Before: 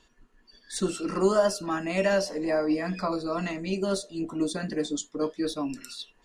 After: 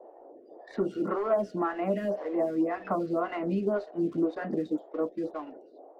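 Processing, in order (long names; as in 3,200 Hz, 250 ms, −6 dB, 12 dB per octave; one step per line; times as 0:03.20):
fade-out on the ending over 1.70 s
high-pass filter 120 Hz 12 dB per octave
noise gate −51 dBFS, range −7 dB
low-pass filter 1,300 Hz 12 dB per octave
leveller curve on the samples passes 1
downward compressor 2.5 to 1, threshold −33 dBFS, peak gain reduction 11.5 dB
noise in a band 290–710 Hz −54 dBFS
wrong playback speed 24 fps film run at 25 fps
phaser with staggered stages 1.9 Hz
level +6 dB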